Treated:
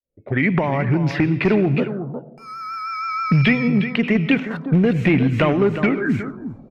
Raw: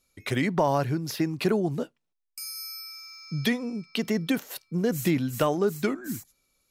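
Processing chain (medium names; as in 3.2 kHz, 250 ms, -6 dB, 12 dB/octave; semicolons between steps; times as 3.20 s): fade-in on the opening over 1.38 s; recorder AGC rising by 28 dB/s; on a send at -15.5 dB: reverberation RT60 1.1 s, pre-delay 79 ms; on the sum: vibrato 6.3 Hz 43 cents; in parallel at -6 dB: saturation -21.5 dBFS, distortion -14 dB; on the sum: bass shelf 390 Hz +8 dB; delay 359 ms -11 dB; one-sided clip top -11 dBFS; touch-sensitive low-pass 550–2400 Hz up, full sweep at -16 dBFS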